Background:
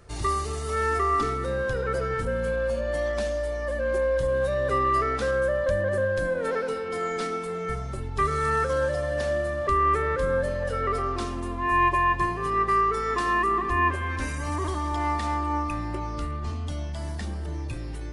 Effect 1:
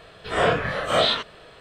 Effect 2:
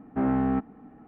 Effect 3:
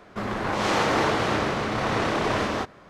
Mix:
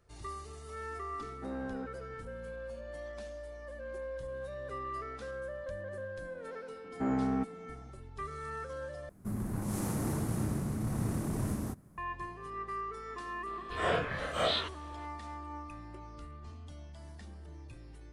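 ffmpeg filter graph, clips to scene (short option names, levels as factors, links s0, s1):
-filter_complex "[2:a]asplit=2[s0][s1];[0:a]volume=0.15[s2];[3:a]firequalizer=gain_entry='entry(160,0);entry(470,-18);entry(1200,-21);entry(3200,-27);entry(10000,9)':delay=0.05:min_phase=1[s3];[s2]asplit=2[s4][s5];[s4]atrim=end=9.094[s6];[s3]atrim=end=2.89,asetpts=PTS-STARTPTS,volume=0.944[s7];[s5]atrim=start=11.976[s8];[s0]atrim=end=1.07,asetpts=PTS-STARTPTS,volume=0.168,afade=t=in:d=0.004:c=hsin,afade=t=out:st=1.066:d=0.004:c=hsin,adelay=1260[s9];[s1]atrim=end=1.07,asetpts=PTS-STARTPTS,volume=0.473,afade=t=in:d=0.004:c=hsin,afade=t=out:st=1.066:d=0.004:c=hsin,adelay=6840[s10];[1:a]atrim=end=1.6,asetpts=PTS-STARTPTS,volume=0.299,afade=t=in:d=0.004:c=hsin,afade=t=out:st=1.596:d=0.004:c=hsin,adelay=13460[s11];[s6][s7]acrossfade=d=0.004:c1=hsin:c2=hsin[s12];[s12][s8]acrossfade=d=0.004:c1=hsin:c2=hsin[s13];[s13][s9][s10][s11]amix=inputs=4:normalize=0"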